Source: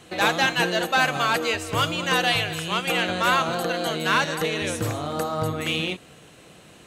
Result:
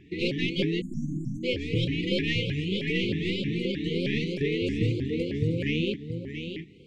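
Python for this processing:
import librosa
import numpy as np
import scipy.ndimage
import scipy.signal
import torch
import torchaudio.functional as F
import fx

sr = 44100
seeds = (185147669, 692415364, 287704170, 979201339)

p1 = fx.tracing_dist(x, sr, depth_ms=0.038)
p2 = fx.quant_dither(p1, sr, seeds[0], bits=6, dither='none')
p3 = p1 + F.gain(torch.from_numpy(p2), -8.0).numpy()
p4 = fx.brickwall_bandstop(p3, sr, low_hz=480.0, high_hz=1900.0)
p5 = fx.spacing_loss(p4, sr, db_at_10k=26)
p6 = p5 + fx.echo_single(p5, sr, ms=678, db=-8.0, dry=0)
p7 = fx.spec_erase(p6, sr, start_s=0.81, length_s=0.62, low_hz=320.0, high_hz=6000.0)
p8 = fx.high_shelf(p7, sr, hz=5500.0, db=-10.5)
y = fx.vibrato_shape(p8, sr, shape='saw_up', rate_hz=3.2, depth_cents=250.0)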